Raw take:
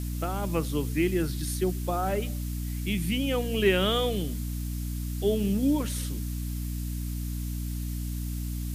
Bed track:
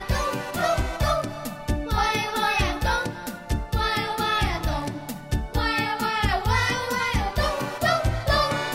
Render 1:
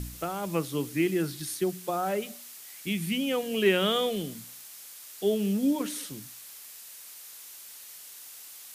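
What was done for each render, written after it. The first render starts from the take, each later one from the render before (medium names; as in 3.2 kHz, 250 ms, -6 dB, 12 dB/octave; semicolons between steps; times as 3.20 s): de-hum 60 Hz, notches 5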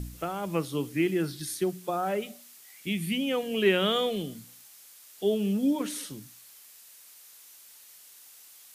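noise print and reduce 6 dB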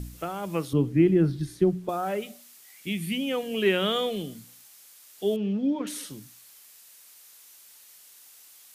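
0.73–1.89 s: tilt EQ -4 dB/octave; 5.36–5.87 s: distance through air 230 m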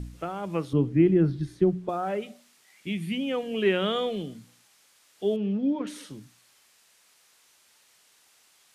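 low-pass 10 kHz 12 dB/octave; treble shelf 4.1 kHz -9.5 dB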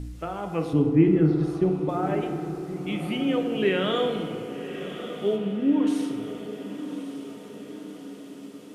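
on a send: echo that smears into a reverb 1147 ms, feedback 57%, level -11 dB; on the sum: FDN reverb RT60 2.1 s, low-frequency decay 0.85×, high-frequency decay 0.45×, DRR 3.5 dB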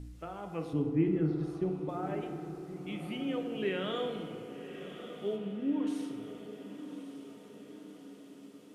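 trim -10 dB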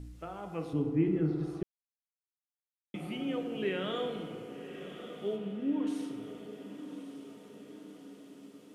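1.63–2.94 s: mute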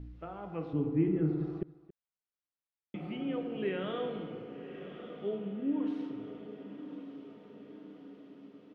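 distance through air 300 m; delay 276 ms -19.5 dB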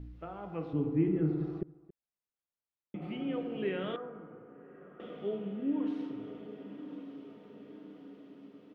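1.61–3.02 s: treble shelf 2 kHz -11.5 dB; 3.96–5.00 s: four-pole ladder low-pass 1.7 kHz, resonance 45%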